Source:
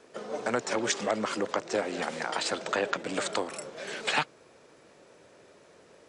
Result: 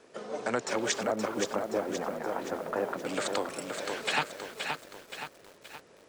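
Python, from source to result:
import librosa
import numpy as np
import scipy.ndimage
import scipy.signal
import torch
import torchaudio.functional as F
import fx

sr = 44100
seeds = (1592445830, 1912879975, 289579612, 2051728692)

y = fx.lowpass(x, sr, hz=1100.0, slope=12, at=(1.03, 3.05))
y = fx.echo_crushed(y, sr, ms=523, feedback_pct=55, bits=8, wet_db=-5.0)
y = y * librosa.db_to_amplitude(-1.5)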